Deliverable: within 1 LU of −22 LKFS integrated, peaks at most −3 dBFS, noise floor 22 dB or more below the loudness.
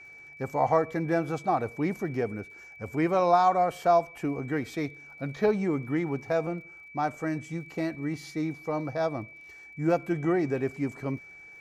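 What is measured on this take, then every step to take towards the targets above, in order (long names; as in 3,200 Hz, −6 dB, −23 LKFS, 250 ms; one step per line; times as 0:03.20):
crackle rate 37 per second; interfering tone 2,300 Hz; level of the tone −46 dBFS; integrated loudness −29.0 LKFS; sample peak −10.5 dBFS; target loudness −22.0 LKFS
→ click removal
notch filter 2,300 Hz, Q 30
level +7 dB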